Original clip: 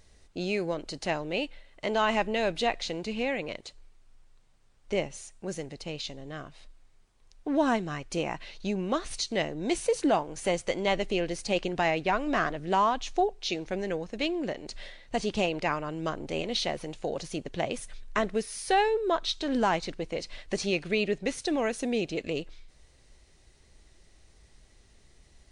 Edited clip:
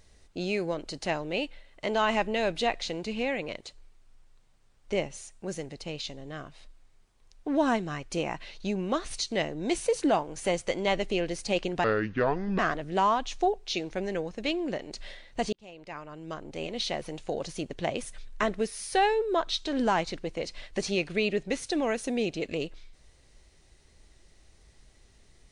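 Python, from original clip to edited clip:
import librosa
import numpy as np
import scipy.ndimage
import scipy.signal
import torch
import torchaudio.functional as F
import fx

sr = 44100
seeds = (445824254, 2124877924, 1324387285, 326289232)

y = fx.edit(x, sr, fx.speed_span(start_s=11.84, length_s=0.5, speed=0.67),
    fx.fade_in_span(start_s=15.28, length_s=1.66), tone=tone)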